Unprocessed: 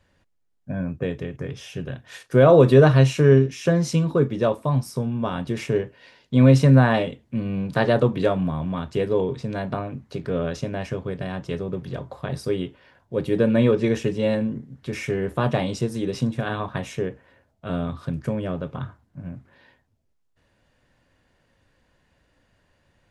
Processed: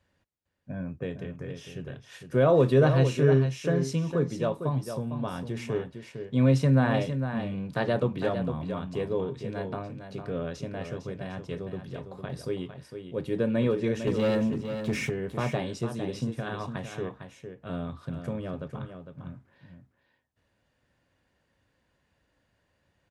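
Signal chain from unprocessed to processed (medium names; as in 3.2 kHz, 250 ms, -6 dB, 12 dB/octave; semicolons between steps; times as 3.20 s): high-pass 43 Hz; 14.07–15.10 s: waveshaping leveller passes 2; on a send: delay 455 ms -8.5 dB; on the sum: trim -7.5 dB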